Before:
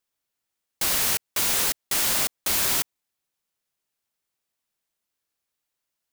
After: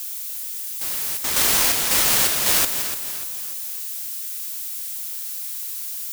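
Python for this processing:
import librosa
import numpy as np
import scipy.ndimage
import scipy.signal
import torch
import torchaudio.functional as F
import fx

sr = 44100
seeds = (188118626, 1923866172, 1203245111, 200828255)

p1 = x + 0.5 * 10.0 ** (-18.5 / 20.0) * np.diff(np.sign(x), prepend=np.sign(x[:1]))
p2 = fx.resample_bad(p1, sr, factor=6, down='none', up='zero_stuff', at=(1.24, 2.65))
p3 = p2 + fx.echo_feedback(p2, sr, ms=294, feedback_pct=45, wet_db=-10.0, dry=0)
y = p3 * 10.0 ** (-8.5 / 20.0)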